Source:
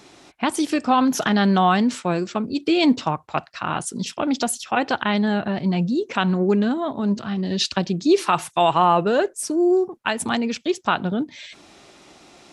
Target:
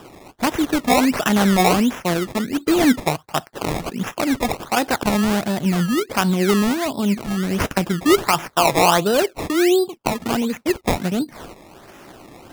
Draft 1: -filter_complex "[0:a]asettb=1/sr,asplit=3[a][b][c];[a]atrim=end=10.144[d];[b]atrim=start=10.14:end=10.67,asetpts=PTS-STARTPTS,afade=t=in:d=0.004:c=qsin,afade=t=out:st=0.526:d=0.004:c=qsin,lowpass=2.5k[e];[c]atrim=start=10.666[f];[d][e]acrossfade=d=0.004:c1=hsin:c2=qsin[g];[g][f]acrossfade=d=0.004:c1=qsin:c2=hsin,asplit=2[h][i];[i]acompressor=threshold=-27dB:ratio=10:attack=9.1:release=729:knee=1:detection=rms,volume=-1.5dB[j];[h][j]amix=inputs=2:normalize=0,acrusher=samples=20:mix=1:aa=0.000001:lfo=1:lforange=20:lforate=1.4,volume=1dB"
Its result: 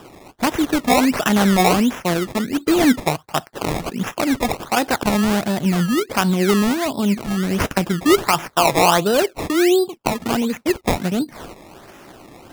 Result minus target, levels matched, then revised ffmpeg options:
compressor: peak gain reduction -6.5 dB
-filter_complex "[0:a]asettb=1/sr,asplit=3[a][b][c];[a]atrim=end=10.144[d];[b]atrim=start=10.14:end=10.67,asetpts=PTS-STARTPTS,afade=t=in:d=0.004:c=qsin,afade=t=out:st=0.526:d=0.004:c=qsin,lowpass=2.5k[e];[c]atrim=start=10.666[f];[d][e]acrossfade=d=0.004:c1=hsin:c2=qsin[g];[g][f]acrossfade=d=0.004:c1=qsin:c2=hsin,asplit=2[h][i];[i]acompressor=threshold=-34dB:ratio=10:attack=9.1:release=729:knee=1:detection=rms,volume=-1.5dB[j];[h][j]amix=inputs=2:normalize=0,acrusher=samples=20:mix=1:aa=0.000001:lfo=1:lforange=20:lforate=1.4,volume=1dB"

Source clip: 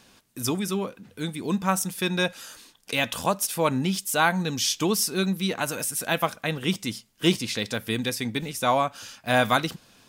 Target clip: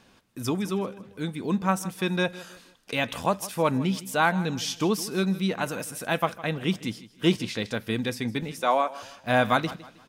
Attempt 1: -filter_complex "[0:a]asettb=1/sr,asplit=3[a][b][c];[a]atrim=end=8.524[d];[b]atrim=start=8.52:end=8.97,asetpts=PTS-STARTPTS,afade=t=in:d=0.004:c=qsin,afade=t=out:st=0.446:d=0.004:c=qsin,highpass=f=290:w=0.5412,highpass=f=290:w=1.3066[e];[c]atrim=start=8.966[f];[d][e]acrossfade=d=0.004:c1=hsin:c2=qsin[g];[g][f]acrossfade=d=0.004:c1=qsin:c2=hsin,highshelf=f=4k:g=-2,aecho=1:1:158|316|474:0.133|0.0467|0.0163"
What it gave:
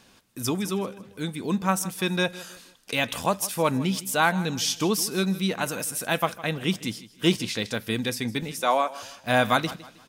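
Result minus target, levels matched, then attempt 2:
8000 Hz band +5.5 dB
-filter_complex "[0:a]asettb=1/sr,asplit=3[a][b][c];[a]atrim=end=8.524[d];[b]atrim=start=8.52:end=8.97,asetpts=PTS-STARTPTS,afade=t=in:d=0.004:c=qsin,afade=t=out:st=0.446:d=0.004:c=qsin,highpass=f=290:w=0.5412,highpass=f=290:w=1.3066[e];[c]atrim=start=8.966[f];[d][e]acrossfade=d=0.004:c1=hsin:c2=qsin[g];[g][f]acrossfade=d=0.004:c1=qsin:c2=hsin,highshelf=f=4k:g=-10.5,aecho=1:1:158|316|474:0.133|0.0467|0.0163"

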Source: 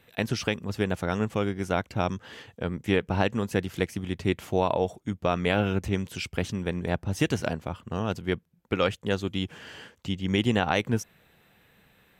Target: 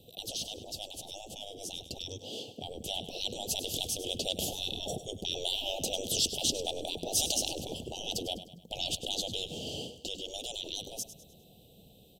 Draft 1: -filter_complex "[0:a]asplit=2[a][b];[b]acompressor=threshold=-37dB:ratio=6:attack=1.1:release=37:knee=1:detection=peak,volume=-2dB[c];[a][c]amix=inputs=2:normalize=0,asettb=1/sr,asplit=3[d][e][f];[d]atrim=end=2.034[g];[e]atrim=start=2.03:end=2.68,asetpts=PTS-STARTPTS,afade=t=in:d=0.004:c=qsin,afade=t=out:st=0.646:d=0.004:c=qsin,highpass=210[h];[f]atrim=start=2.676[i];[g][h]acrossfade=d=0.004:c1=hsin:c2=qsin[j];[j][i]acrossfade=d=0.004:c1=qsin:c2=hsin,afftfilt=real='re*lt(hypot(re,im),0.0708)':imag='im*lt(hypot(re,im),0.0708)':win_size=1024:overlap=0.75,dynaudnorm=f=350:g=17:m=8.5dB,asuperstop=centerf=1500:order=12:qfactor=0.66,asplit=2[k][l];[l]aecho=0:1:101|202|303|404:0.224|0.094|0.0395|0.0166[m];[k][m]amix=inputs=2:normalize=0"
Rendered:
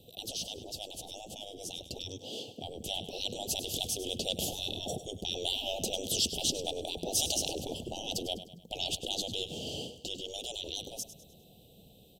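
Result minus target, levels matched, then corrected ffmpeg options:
compressor: peak gain reduction +6.5 dB
-filter_complex "[0:a]asplit=2[a][b];[b]acompressor=threshold=-29dB:ratio=6:attack=1.1:release=37:knee=1:detection=peak,volume=-2dB[c];[a][c]amix=inputs=2:normalize=0,asettb=1/sr,asplit=3[d][e][f];[d]atrim=end=2.034[g];[e]atrim=start=2.03:end=2.68,asetpts=PTS-STARTPTS,afade=t=in:d=0.004:c=qsin,afade=t=out:st=0.646:d=0.004:c=qsin,highpass=210[h];[f]atrim=start=2.676[i];[g][h]acrossfade=d=0.004:c1=hsin:c2=qsin[j];[j][i]acrossfade=d=0.004:c1=qsin:c2=hsin,afftfilt=real='re*lt(hypot(re,im),0.0708)':imag='im*lt(hypot(re,im),0.0708)':win_size=1024:overlap=0.75,dynaudnorm=f=350:g=17:m=8.5dB,asuperstop=centerf=1500:order=12:qfactor=0.66,asplit=2[k][l];[l]aecho=0:1:101|202|303|404:0.224|0.094|0.0395|0.0166[m];[k][m]amix=inputs=2:normalize=0"

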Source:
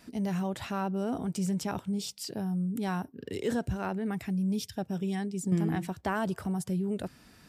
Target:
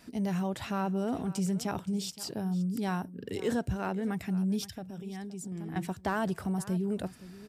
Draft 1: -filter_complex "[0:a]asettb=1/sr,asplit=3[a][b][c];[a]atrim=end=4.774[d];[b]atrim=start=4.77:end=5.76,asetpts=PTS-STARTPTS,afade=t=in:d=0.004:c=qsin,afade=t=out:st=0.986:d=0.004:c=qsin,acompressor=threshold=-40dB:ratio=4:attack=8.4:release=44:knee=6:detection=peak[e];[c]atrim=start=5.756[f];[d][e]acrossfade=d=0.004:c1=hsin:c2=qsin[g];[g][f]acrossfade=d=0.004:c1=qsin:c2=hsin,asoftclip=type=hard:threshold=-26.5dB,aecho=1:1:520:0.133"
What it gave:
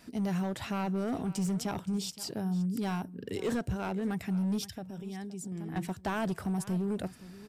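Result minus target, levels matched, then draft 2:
hard clip: distortion +23 dB
-filter_complex "[0:a]asettb=1/sr,asplit=3[a][b][c];[a]atrim=end=4.774[d];[b]atrim=start=4.77:end=5.76,asetpts=PTS-STARTPTS,afade=t=in:d=0.004:c=qsin,afade=t=out:st=0.986:d=0.004:c=qsin,acompressor=threshold=-40dB:ratio=4:attack=8.4:release=44:knee=6:detection=peak[e];[c]atrim=start=5.756[f];[d][e]acrossfade=d=0.004:c1=hsin:c2=qsin[g];[g][f]acrossfade=d=0.004:c1=qsin:c2=hsin,asoftclip=type=hard:threshold=-20dB,aecho=1:1:520:0.133"

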